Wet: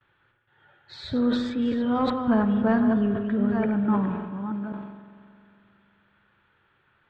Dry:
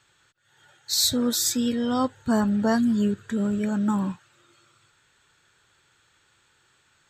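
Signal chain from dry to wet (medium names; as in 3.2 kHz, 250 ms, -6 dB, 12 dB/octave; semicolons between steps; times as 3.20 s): chunks repeated in reverse 525 ms, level -7 dB; gate with hold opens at -55 dBFS; FFT filter 1.6 kHz 0 dB, 3.3 kHz -6 dB, 6 kHz -29 dB; saturation -11 dBFS, distortion -27 dB; distance through air 110 m; spring tank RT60 2.8 s, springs 45 ms, chirp 45 ms, DRR 9 dB; decay stretcher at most 47 dB/s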